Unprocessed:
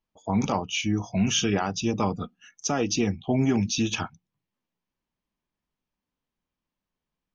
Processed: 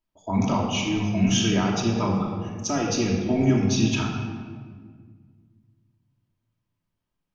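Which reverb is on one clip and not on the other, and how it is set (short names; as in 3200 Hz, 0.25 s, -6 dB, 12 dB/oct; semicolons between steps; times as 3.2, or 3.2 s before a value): shoebox room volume 2200 m³, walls mixed, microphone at 2.8 m; gain -3 dB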